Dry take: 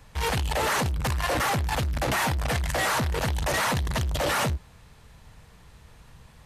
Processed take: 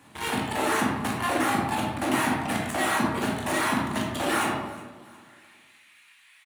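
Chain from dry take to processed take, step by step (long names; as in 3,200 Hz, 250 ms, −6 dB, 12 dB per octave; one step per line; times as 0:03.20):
running median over 3 samples
notch filter 6,200 Hz, Q 28
reverb reduction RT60 1 s
thirty-one-band graphic EQ 100 Hz +10 dB, 500 Hz −11 dB, 5,000 Hz −8 dB, 10,000 Hz +8 dB
in parallel at −0.5 dB: downward compressor, threshold −33 dBFS, peak gain reduction 13 dB
on the sum: high-pass filter sweep 260 Hz → 2,200 Hz, 0:04.37–0:05.46
repeating echo 366 ms, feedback 41%, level −20 dB
convolution reverb RT60 1.1 s, pre-delay 15 ms, DRR −3 dB
level −5.5 dB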